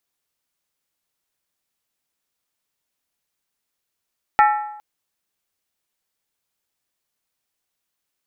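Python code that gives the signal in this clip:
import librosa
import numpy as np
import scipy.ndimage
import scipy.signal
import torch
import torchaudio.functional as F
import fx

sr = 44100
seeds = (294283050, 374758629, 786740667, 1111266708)

y = fx.strike_skin(sr, length_s=0.41, level_db=-9, hz=841.0, decay_s=0.83, tilt_db=5, modes=6)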